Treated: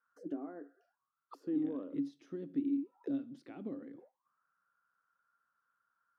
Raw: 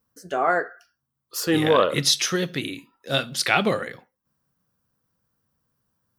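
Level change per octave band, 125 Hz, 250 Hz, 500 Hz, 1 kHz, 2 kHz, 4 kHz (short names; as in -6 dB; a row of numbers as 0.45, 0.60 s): -23.5 dB, -8.0 dB, -22.0 dB, -32.0 dB, under -35 dB, under -40 dB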